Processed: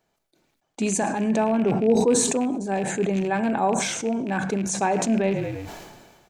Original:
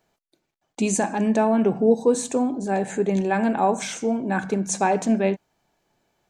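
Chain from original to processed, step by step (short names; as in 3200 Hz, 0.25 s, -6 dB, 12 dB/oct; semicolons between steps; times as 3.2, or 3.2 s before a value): rattling part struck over -26 dBFS, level -26 dBFS; frequency-shifting echo 0.107 s, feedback 49%, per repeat -34 Hz, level -22.5 dB; sustainer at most 38 dB/s; gain -2.5 dB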